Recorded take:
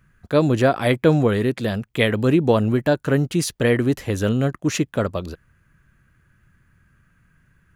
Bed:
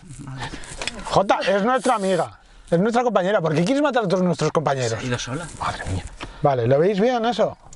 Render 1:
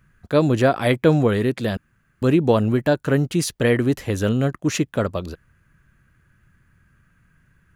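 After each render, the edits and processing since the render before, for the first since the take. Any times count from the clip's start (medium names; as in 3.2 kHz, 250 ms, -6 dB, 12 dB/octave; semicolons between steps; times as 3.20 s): 1.77–2.22 s: room tone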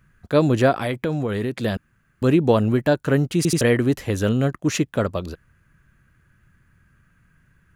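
0.81–1.63 s: compression 4:1, threshold -21 dBFS; 3.37 s: stutter in place 0.08 s, 3 plays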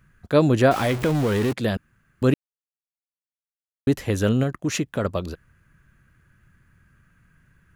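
0.71–1.53 s: jump at every zero crossing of -25 dBFS; 2.34–3.87 s: mute; 4.43–5.05 s: compression 2:1, threshold -22 dBFS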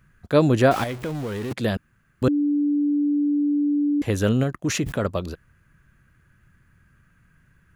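0.84–1.51 s: gain -7.5 dB; 2.28–4.02 s: bleep 291 Hz -18 dBFS; 4.60–5.04 s: decay stretcher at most 100 dB/s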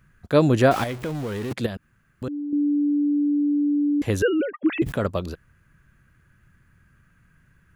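1.66–2.53 s: compression 2:1, threshold -35 dBFS; 4.22–4.82 s: formants replaced by sine waves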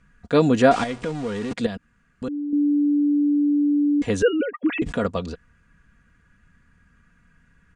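steep low-pass 9.3 kHz 72 dB/octave; comb 4.2 ms, depth 57%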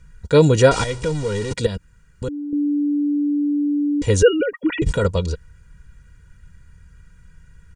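tone controls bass +10 dB, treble +10 dB; comb 2.1 ms, depth 78%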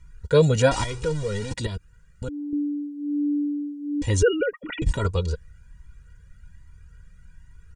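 Shepard-style flanger rising 1.2 Hz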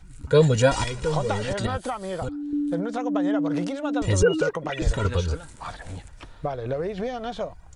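add bed -11 dB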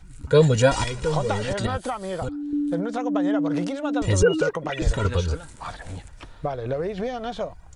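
trim +1 dB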